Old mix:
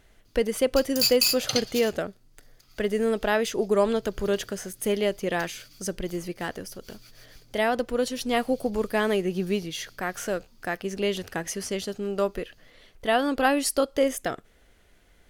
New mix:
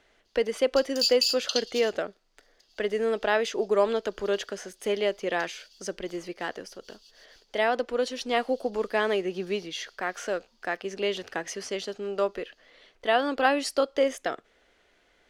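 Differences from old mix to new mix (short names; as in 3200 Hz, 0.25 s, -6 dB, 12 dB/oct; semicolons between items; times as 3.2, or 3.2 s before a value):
background: add brick-wall FIR high-pass 2600 Hz; master: add three-band isolator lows -15 dB, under 280 Hz, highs -18 dB, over 6700 Hz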